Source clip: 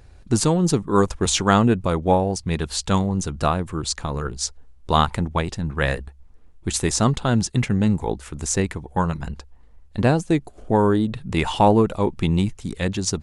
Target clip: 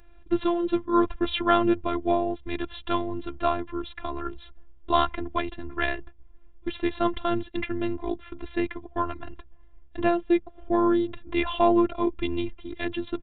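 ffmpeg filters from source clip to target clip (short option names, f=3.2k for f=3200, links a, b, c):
-af "aresample=8000,aresample=44100,afftfilt=real='hypot(re,im)*cos(PI*b)':imag='0':win_size=512:overlap=0.75"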